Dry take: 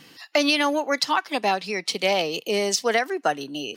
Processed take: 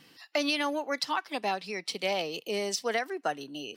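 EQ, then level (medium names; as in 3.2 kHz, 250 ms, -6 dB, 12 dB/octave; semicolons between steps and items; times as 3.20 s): band-stop 6.6 kHz, Q 15; -8.0 dB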